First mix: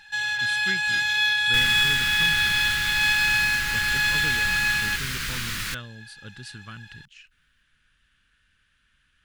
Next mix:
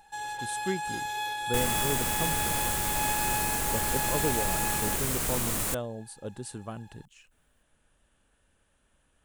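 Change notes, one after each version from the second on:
first sound -7.0 dB; master: remove EQ curve 150 Hz 0 dB, 730 Hz -18 dB, 1500 Hz +9 dB, 4800 Hz +8 dB, 8100 Hz -7 dB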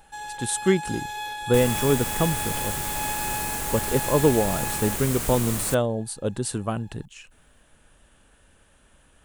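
speech +11.5 dB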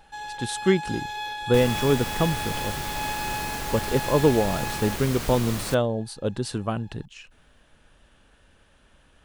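master: add resonant high shelf 6400 Hz -7 dB, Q 1.5

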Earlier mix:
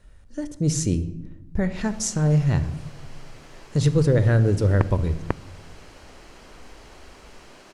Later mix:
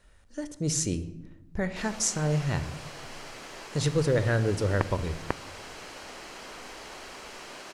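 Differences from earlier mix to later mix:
first sound +7.0 dB; master: add low shelf 350 Hz -10 dB

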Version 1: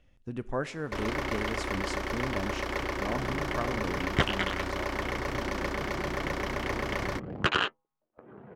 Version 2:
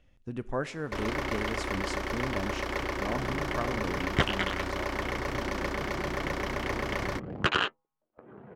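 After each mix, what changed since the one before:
none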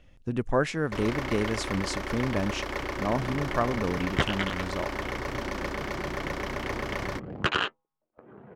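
speech +8.0 dB; reverb: off

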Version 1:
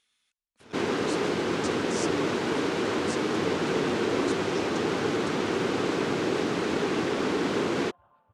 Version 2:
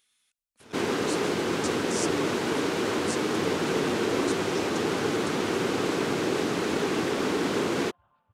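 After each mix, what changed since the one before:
second sound: add bell 550 Hz -8 dB 2.4 oct; master: remove air absorption 51 m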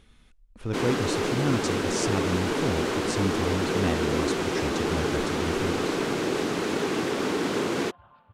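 speech: remove differentiator; second sound +12.0 dB

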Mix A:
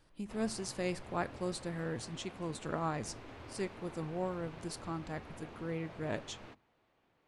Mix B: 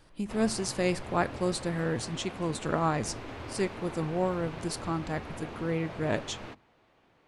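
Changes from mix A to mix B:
speech +8.0 dB; background +9.0 dB

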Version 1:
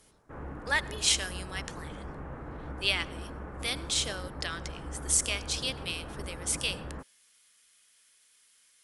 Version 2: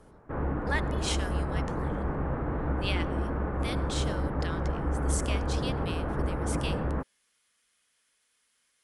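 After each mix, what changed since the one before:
background +11.0 dB; master: add high shelf 2100 Hz -10.5 dB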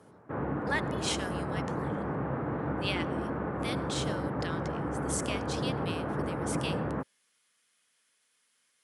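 master: add HPF 100 Hz 24 dB/oct

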